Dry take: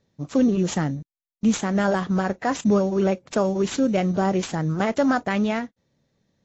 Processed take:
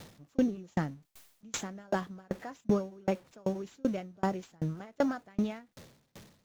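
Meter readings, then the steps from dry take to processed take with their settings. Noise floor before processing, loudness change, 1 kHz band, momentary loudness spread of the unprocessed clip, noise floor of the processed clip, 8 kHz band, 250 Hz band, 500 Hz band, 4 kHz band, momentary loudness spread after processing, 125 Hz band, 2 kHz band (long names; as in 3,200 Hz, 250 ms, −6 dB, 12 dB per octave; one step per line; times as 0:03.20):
below −85 dBFS, −11.5 dB, −12.5 dB, 6 LU, −72 dBFS, can't be measured, −11.5 dB, −11.5 dB, −12.5 dB, 8 LU, −12.0 dB, −14.0 dB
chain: converter with a step at zero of −36.5 dBFS
tremolo with a ramp in dB decaying 2.6 Hz, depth 35 dB
level −4.5 dB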